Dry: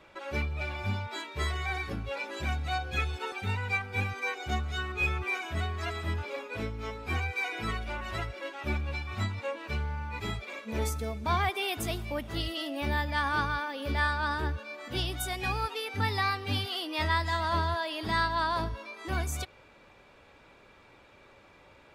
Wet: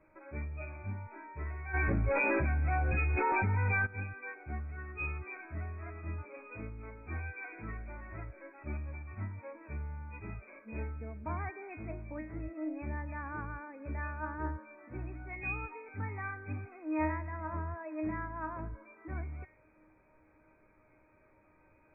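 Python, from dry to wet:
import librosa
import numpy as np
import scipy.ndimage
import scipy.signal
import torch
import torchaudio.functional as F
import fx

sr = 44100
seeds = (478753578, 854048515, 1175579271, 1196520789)

y = fx.brickwall_lowpass(x, sr, high_hz=2600.0)
y = fx.low_shelf(y, sr, hz=360.0, db=8.0)
y = fx.comb_fb(y, sr, f0_hz=310.0, decay_s=0.48, harmonics='all', damping=0.0, mix_pct=90)
y = fx.env_flatten(y, sr, amount_pct=100, at=(1.73, 3.85), fade=0.02)
y = y * 10.0 ** (4.0 / 20.0)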